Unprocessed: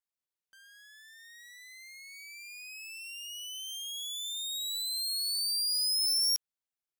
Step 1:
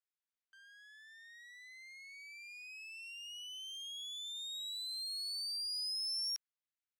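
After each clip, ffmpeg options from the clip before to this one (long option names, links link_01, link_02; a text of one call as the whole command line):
ffmpeg -i in.wav -af "highpass=frequency=1300:width=0.5412,highpass=frequency=1300:width=1.3066,aemphasis=mode=reproduction:type=riaa" out.wav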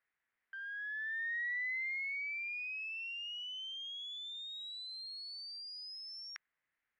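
ffmpeg -i in.wav -af "lowpass=frequency=1900:width_type=q:width=3.7,volume=8dB" out.wav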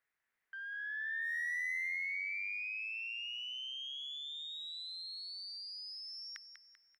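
ffmpeg -i in.wav -filter_complex "[0:a]asoftclip=type=hard:threshold=-35.5dB,asplit=2[link_01][link_02];[link_02]aecho=0:1:195|390|585|780|975:0.376|0.162|0.0695|0.0299|0.0128[link_03];[link_01][link_03]amix=inputs=2:normalize=0" out.wav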